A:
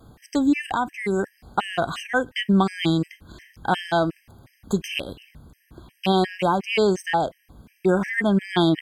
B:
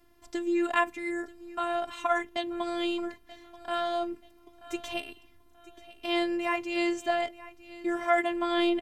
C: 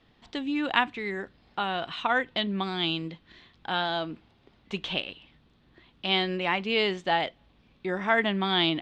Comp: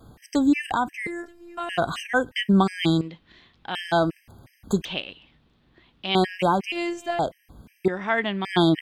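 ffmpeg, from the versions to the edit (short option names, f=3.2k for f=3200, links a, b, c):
-filter_complex "[1:a]asplit=2[a][b];[2:a]asplit=3[c][d][e];[0:a]asplit=6[f][g][h][i][j][k];[f]atrim=end=1.072[l];[a]atrim=start=1.068:end=1.692[m];[g]atrim=start=1.688:end=3.012[n];[c]atrim=start=3.008:end=3.752[o];[h]atrim=start=3.748:end=4.852[p];[d]atrim=start=4.848:end=6.152[q];[i]atrim=start=6.148:end=6.722[r];[b]atrim=start=6.718:end=7.192[s];[j]atrim=start=7.188:end=7.882[t];[e]atrim=start=7.878:end=8.452[u];[k]atrim=start=8.448[v];[l][m]acrossfade=d=0.004:c1=hsin:c2=hsin[w];[w][n]acrossfade=d=0.004:c1=hsin:c2=hsin[x];[x][o]acrossfade=d=0.004:c1=hsin:c2=hsin[y];[y][p]acrossfade=d=0.004:c1=hsin:c2=hsin[z];[z][q]acrossfade=d=0.004:c1=hsin:c2=hsin[aa];[aa][r]acrossfade=d=0.004:c1=hsin:c2=hsin[ab];[ab][s]acrossfade=d=0.004:c1=hsin:c2=hsin[ac];[ac][t]acrossfade=d=0.004:c1=hsin:c2=hsin[ad];[ad][u]acrossfade=d=0.004:c1=hsin:c2=hsin[ae];[ae][v]acrossfade=d=0.004:c1=hsin:c2=hsin"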